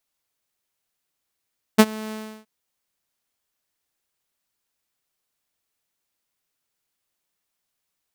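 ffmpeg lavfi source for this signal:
-f lavfi -i "aevalsrc='0.631*(2*mod(217*t,1)-1)':d=0.673:s=44100,afade=t=in:d=0.017,afade=t=out:st=0.017:d=0.05:silence=0.0668,afade=t=out:st=0.34:d=0.333"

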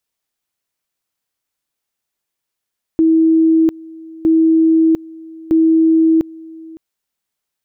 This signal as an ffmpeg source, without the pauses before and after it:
-f lavfi -i "aevalsrc='pow(10,(-8-23*gte(mod(t,1.26),0.7))/20)*sin(2*PI*323*t)':d=3.78:s=44100"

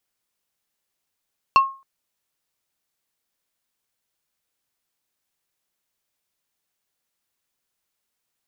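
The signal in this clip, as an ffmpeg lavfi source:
-f lavfi -i "aevalsrc='0.422*pow(10,-3*t/0.34)*sin(2*PI*1080*t)+0.168*pow(10,-3*t/0.113)*sin(2*PI*2700*t)+0.0668*pow(10,-3*t/0.064)*sin(2*PI*4320*t)+0.0266*pow(10,-3*t/0.049)*sin(2*PI*5400*t)+0.0106*pow(10,-3*t/0.036)*sin(2*PI*7020*t)':d=0.27:s=44100"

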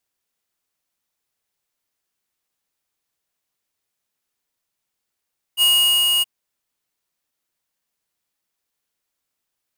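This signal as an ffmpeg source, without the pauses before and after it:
-f lavfi -i "aevalsrc='0.188*(2*lt(mod(2870*t,1),0.5)-1)':d=0.673:s=44100,afade=t=in:d=0.048,afade=t=out:st=0.048:d=0.442:silence=0.708,afade=t=out:st=0.65:d=0.023"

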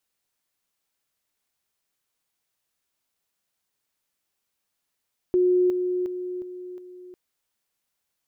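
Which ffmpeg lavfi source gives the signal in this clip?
-f lavfi -i "aevalsrc='pow(10,(-16.5-6*floor(t/0.36))/20)*sin(2*PI*362*t)':d=1.8:s=44100"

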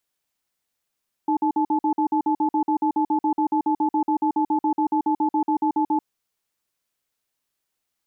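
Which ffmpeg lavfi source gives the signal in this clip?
-f lavfi -i "aevalsrc='0.0944*(sin(2*PI*308*t)+sin(2*PI*866*t))*clip(min(mod(t,0.14),0.09-mod(t,0.14))/0.005,0,1)':d=4.71:s=44100"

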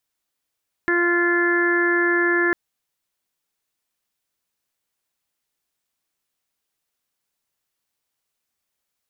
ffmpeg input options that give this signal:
-f lavfi -i "aevalsrc='0.1*sin(2*PI*347*t)+0.02*sin(2*PI*694*t)+0.0316*sin(2*PI*1041*t)+0.0447*sin(2*PI*1388*t)+0.106*sin(2*PI*1735*t)+0.0266*sin(2*PI*2082*t)':d=1.65:s=44100"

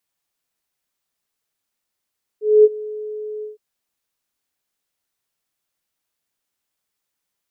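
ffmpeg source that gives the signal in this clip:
-f lavfi -i "aevalsrc='0.562*sin(2*PI*426*t)':d=1.162:s=44100,afade=t=in:d=0.233,afade=t=out:st=0.233:d=0.038:silence=0.0891,afade=t=out:st=1.02:d=0.142"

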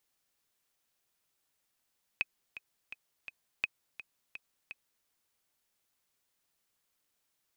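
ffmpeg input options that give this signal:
-f lavfi -i "aevalsrc='pow(10,(-16-14*gte(mod(t,4*60/168),60/168))/20)*sin(2*PI*2530*mod(t,60/168))*exp(-6.91*mod(t,60/168)/0.03)':d=2.85:s=44100"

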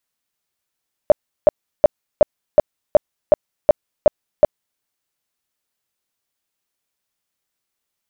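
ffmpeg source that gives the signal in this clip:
-f lavfi -i "aevalsrc='0.596*sin(2*PI*603*mod(t,0.37))*lt(mod(t,0.37),11/603)':d=3.7:s=44100"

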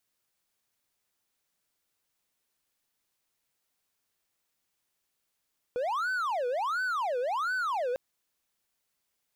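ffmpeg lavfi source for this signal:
-f lavfi -i "aevalsrc='0.0531*(1-4*abs(mod((1002.5*t-517.5/(2*PI*1.4)*sin(2*PI*1.4*t))+0.25,1)-0.5))':d=2.2:s=44100"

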